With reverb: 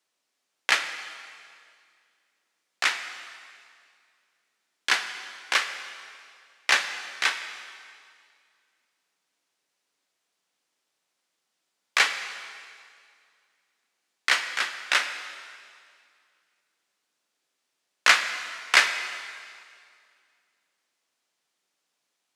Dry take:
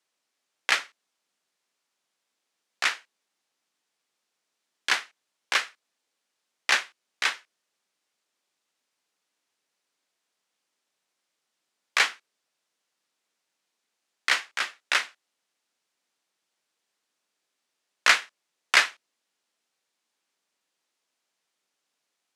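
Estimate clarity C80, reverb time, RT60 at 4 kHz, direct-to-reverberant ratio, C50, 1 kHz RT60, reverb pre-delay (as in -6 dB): 10.0 dB, 2.2 s, 2.0 s, 7.5 dB, 9.0 dB, 2.1 s, 3 ms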